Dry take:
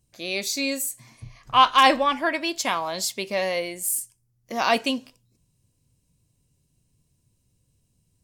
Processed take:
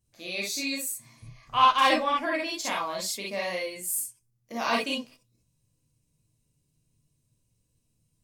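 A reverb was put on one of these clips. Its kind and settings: non-linear reverb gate 80 ms rising, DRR -3.5 dB; gain -9 dB

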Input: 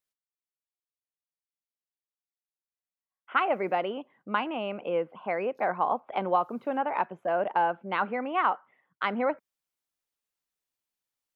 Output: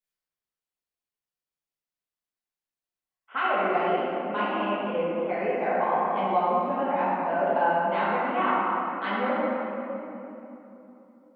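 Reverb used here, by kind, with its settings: shoebox room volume 170 m³, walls hard, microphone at 1.5 m; gain -8 dB

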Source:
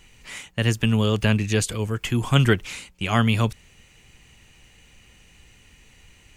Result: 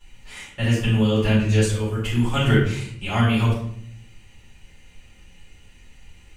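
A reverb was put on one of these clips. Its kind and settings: shoebox room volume 120 m³, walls mixed, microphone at 4.2 m; gain -14.5 dB

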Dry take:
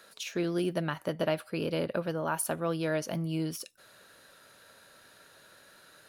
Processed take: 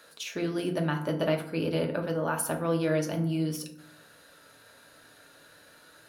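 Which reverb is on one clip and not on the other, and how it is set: FDN reverb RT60 0.7 s, low-frequency decay 1.5×, high-frequency decay 0.5×, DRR 3 dB

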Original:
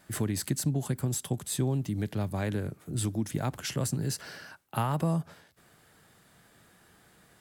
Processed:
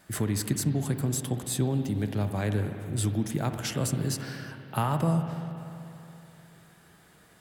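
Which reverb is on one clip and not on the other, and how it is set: spring tank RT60 3.1 s, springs 48/59 ms, chirp 80 ms, DRR 6.5 dB; gain +1.5 dB

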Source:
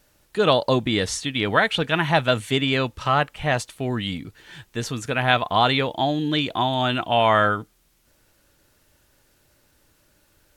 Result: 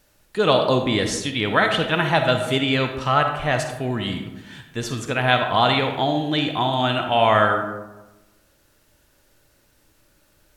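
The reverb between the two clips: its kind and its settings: digital reverb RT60 1.1 s, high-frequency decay 0.45×, pre-delay 10 ms, DRR 5 dB

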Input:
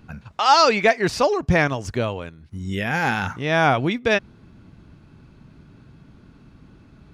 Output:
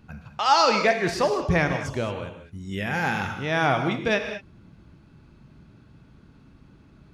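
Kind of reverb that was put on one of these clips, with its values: non-linear reverb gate 0.24 s flat, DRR 5.5 dB; gain -4.5 dB

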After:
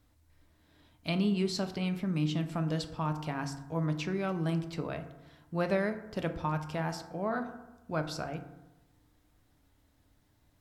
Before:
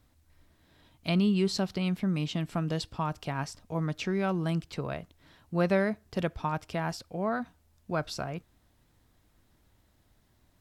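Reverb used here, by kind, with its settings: FDN reverb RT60 1 s, low-frequency decay 1.1×, high-frequency decay 0.4×, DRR 6.5 dB; gain -3 dB

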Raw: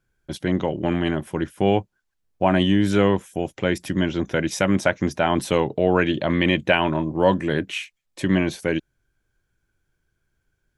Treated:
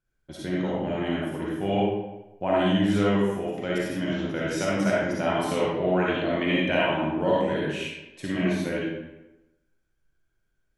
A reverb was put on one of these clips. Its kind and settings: digital reverb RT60 0.99 s, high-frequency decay 0.7×, pre-delay 15 ms, DRR -6.5 dB; gain -11 dB

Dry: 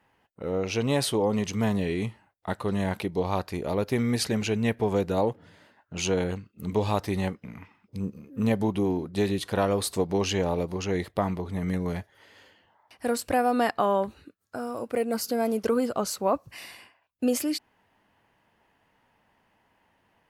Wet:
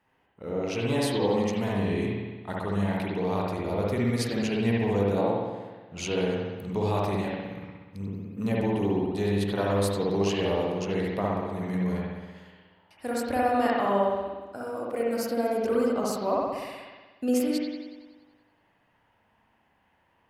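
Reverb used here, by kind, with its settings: spring tank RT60 1.3 s, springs 60 ms, chirp 35 ms, DRR -4 dB; gain -5.5 dB

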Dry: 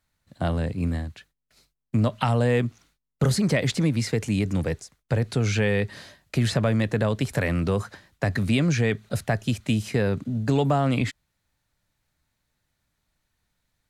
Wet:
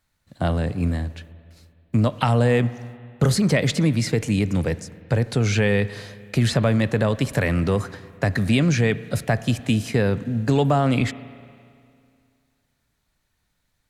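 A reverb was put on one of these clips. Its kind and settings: spring tank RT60 2.3 s, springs 34/49 ms, chirp 75 ms, DRR 15.5 dB; gain +3 dB

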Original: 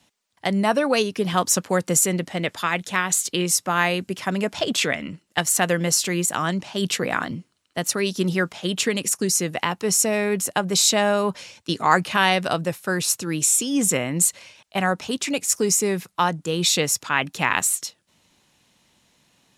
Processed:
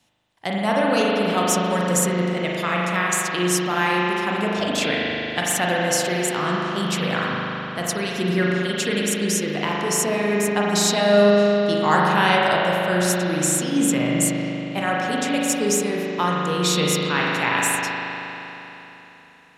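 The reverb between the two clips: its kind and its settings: spring tank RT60 3.6 s, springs 39 ms, chirp 25 ms, DRR -4.5 dB; gain -3.5 dB

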